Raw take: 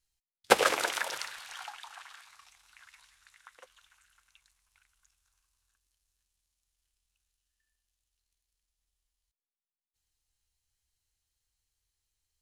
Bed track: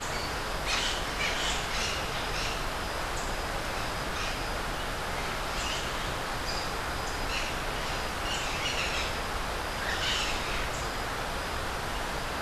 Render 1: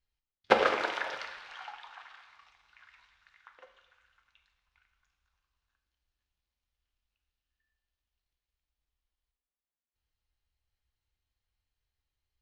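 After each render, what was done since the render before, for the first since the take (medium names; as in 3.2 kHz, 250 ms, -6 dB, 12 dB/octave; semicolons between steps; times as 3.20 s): distance through air 240 m; two-slope reverb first 0.86 s, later 2.8 s, from -28 dB, DRR 5 dB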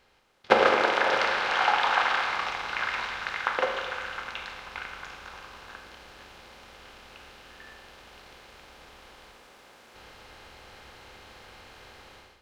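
spectral levelling over time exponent 0.6; level rider gain up to 15 dB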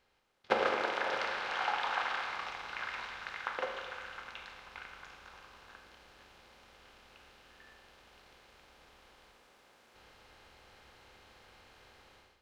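trim -10 dB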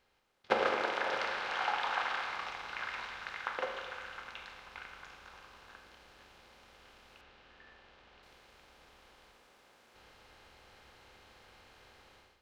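7.21–8.23 s: low-pass 4.2 kHz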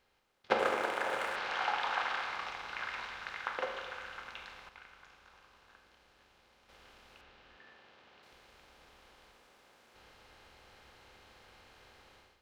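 0.59–1.36 s: median filter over 9 samples; 4.69–6.69 s: gain -7 dB; 7.58–8.32 s: high-pass 120 Hz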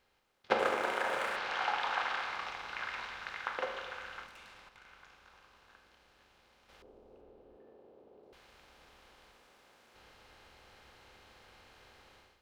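0.82–1.37 s: flutter echo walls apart 6 m, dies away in 0.28 s; 4.26–4.86 s: valve stage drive 50 dB, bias 0.55; 6.82–8.33 s: FFT filter 160 Hz 0 dB, 430 Hz +12 dB, 1.7 kHz -20 dB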